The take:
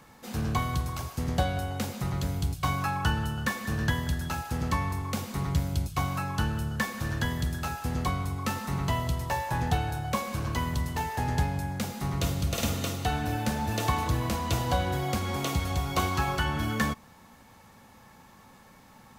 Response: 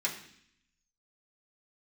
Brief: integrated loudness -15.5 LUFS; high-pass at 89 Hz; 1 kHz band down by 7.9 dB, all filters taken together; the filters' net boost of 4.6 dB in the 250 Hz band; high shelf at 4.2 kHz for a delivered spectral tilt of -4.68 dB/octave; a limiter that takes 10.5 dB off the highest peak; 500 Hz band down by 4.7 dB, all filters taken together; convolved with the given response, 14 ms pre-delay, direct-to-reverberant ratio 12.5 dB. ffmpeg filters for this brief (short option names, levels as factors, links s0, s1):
-filter_complex "[0:a]highpass=89,equalizer=f=250:t=o:g=8,equalizer=f=500:t=o:g=-6.5,equalizer=f=1000:t=o:g=-9,highshelf=f=4200:g=8,alimiter=limit=0.0841:level=0:latency=1,asplit=2[s0][s1];[1:a]atrim=start_sample=2205,adelay=14[s2];[s1][s2]afir=irnorm=-1:irlink=0,volume=0.126[s3];[s0][s3]amix=inputs=2:normalize=0,volume=6.31"